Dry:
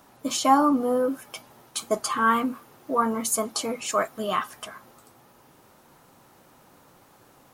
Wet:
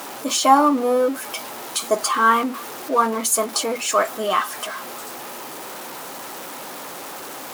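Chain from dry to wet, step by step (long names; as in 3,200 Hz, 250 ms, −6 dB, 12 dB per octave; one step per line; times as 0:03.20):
converter with a step at zero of −33.5 dBFS
high-pass filter 300 Hz 12 dB per octave
level +5 dB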